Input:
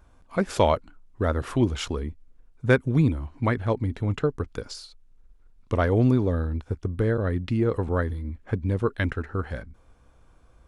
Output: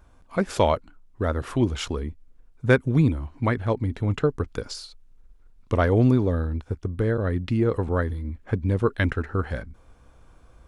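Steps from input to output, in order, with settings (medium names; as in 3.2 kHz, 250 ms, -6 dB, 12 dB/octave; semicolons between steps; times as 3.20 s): gain riding within 4 dB 2 s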